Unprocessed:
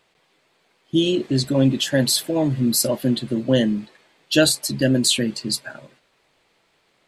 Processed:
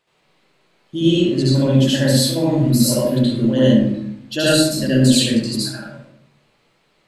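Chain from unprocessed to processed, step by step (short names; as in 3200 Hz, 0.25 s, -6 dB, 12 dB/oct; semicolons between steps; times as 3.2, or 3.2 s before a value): notches 60/120 Hz; reverb RT60 0.70 s, pre-delay 73 ms, DRR -9 dB; gain -7.5 dB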